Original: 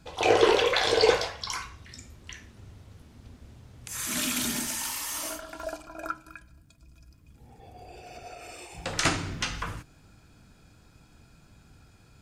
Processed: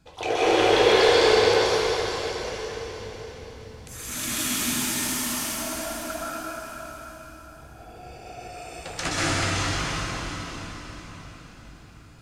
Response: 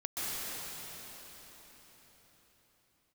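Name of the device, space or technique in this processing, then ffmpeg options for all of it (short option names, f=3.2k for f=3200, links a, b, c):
cathedral: -filter_complex "[1:a]atrim=start_sample=2205[a];[0:a][a]afir=irnorm=-1:irlink=0,volume=-1.5dB"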